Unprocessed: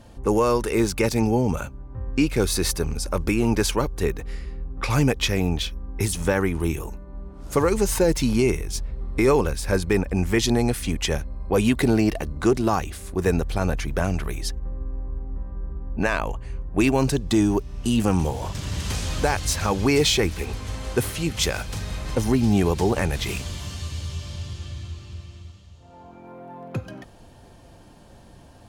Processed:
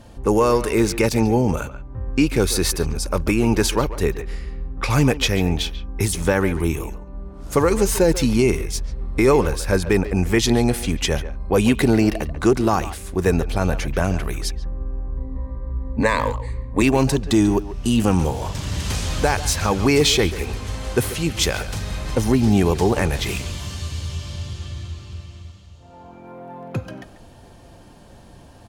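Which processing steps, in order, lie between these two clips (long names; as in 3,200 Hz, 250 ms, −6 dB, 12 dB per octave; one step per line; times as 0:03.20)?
0:15.17–0:16.82: EQ curve with evenly spaced ripples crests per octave 1, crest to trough 15 dB
far-end echo of a speakerphone 140 ms, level −12 dB
level +3 dB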